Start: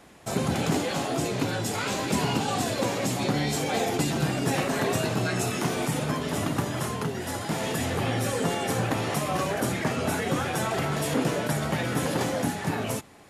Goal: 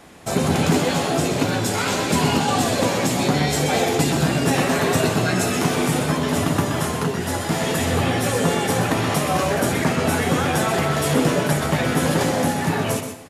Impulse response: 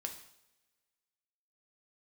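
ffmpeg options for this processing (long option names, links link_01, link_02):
-filter_complex "[0:a]asplit=2[link_01][link_02];[link_02]adelay=12,volume=-11dB[link_03];[link_01][link_03]amix=inputs=2:normalize=0,asplit=2[link_04][link_05];[1:a]atrim=start_sample=2205,adelay=125[link_06];[link_05][link_06]afir=irnorm=-1:irlink=0,volume=-5.5dB[link_07];[link_04][link_07]amix=inputs=2:normalize=0,volume=6dB"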